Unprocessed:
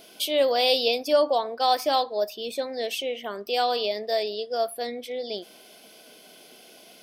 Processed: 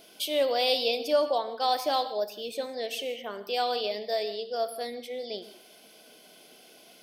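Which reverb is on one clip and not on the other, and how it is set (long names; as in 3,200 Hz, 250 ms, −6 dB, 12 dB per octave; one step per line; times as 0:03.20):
reverb whose tail is shaped and stops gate 200 ms flat, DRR 11 dB
level −4 dB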